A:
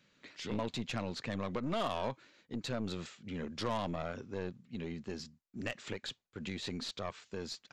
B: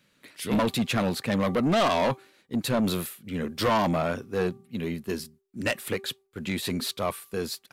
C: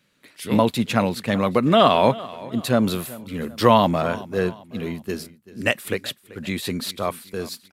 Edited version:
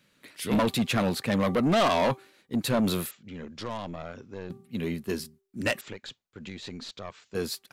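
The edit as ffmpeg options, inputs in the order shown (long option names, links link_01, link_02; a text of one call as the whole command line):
ffmpeg -i take0.wav -i take1.wav -filter_complex "[0:a]asplit=2[link_01][link_02];[1:a]asplit=3[link_03][link_04][link_05];[link_03]atrim=end=3.112[link_06];[link_01]atrim=start=3.108:end=4.502[link_07];[link_04]atrim=start=4.498:end=5.812[link_08];[link_02]atrim=start=5.808:end=7.352[link_09];[link_05]atrim=start=7.348[link_10];[link_06][link_07]acrossfade=duration=0.004:curve1=hsin:curve2=hsin[link_11];[link_11][link_08]acrossfade=duration=0.004:curve1=hsin:curve2=hsin[link_12];[link_12][link_09]acrossfade=duration=0.004:curve1=hsin:curve2=hsin[link_13];[link_13][link_10]acrossfade=duration=0.004:curve1=hsin:curve2=hsin" out.wav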